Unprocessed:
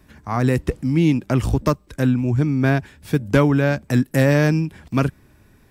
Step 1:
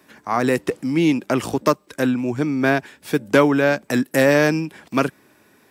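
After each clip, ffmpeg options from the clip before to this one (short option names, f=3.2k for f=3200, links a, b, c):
-af "highpass=300,volume=4dB"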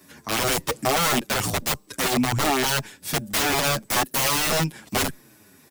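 -filter_complex "[0:a]bass=f=250:g=7,treble=f=4k:g=10,aeval=exprs='(mod(5.31*val(0)+1,2)-1)/5.31':c=same,asplit=2[a][b];[b]adelay=7.7,afreqshift=-2[c];[a][c]amix=inputs=2:normalize=1,volume=1dB"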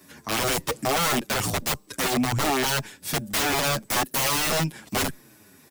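-af "asoftclip=type=tanh:threshold=-16dB"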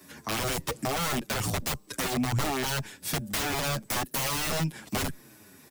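-filter_complex "[0:a]acrossover=split=170[a][b];[b]acompressor=threshold=-30dB:ratio=2.5[c];[a][c]amix=inputs=2:normalize=0"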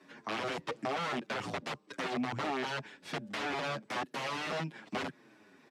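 -af "highpass=230,lowpass=3.1k,volume=-3.5dB"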